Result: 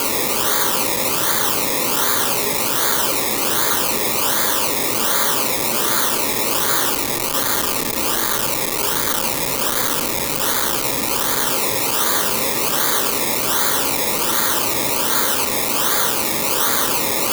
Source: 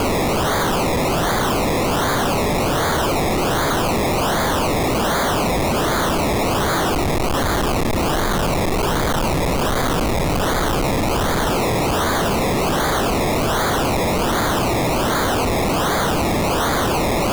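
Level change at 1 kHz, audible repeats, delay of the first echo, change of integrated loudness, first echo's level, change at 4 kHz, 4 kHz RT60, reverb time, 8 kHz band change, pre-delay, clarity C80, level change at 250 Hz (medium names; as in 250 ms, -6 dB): -3.5 dB, no echo, no echo, +2.5 dB, no echo, +3.5 dB, 0.90 s, 0.85 s, +9.0 dB, 3 ms, 14.5 dB, -7.0 dB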